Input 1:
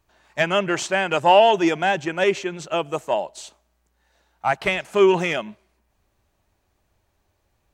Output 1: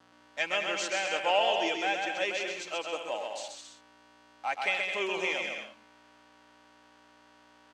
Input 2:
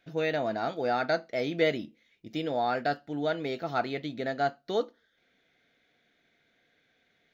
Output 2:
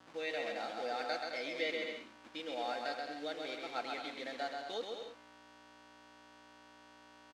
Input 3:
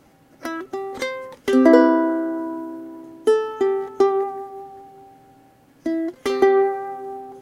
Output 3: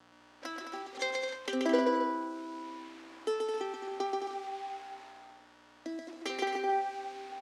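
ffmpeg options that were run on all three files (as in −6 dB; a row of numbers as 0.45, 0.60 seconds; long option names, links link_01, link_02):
-filter_complex "[0:a]anlmdn=0.158,equalizer=frequency=1200:width=0.52:gain=-11.5,aecho=1:1:3.8:0.42,aeval=exprs='val(0)+0.00708*(sin(2*PI*60*n/s)+sin(2*PI*2*60*n/s)/2+sin(2*PI*3*60*n/s)/3+sin(2*PI*4*60*n/s)/4+sin(2*PI*5*60*n/s)/5)':channel_layout=same,asplit=2[link_01][link_02];[link_02]acompressor=threshold=-40dB:ratio=6,volume=1dB[link_03];[link_01][link_03]amix=inputs=2:normalize=0,aeval=exprs='val(0)*gte(abs(val(0)),0.00841)':channel_layout=same,aecho=1:1:130|214.5|269.4|305.1|328.3:0.631|0.398|0.251|0.158|0.1,adynamicequalizer=threshold=0.00447:dfrequency=2300:dqfactor=4.8:tfrequency=2300:tqfactor=4.8:attack=5:release=100:ratio=0.375:range=2.5:mode=boostabove:tftype=bell,highpass=640,lowpass=5700,volume=-4dB"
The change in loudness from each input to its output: −10.0, −9.5, −14.5 LU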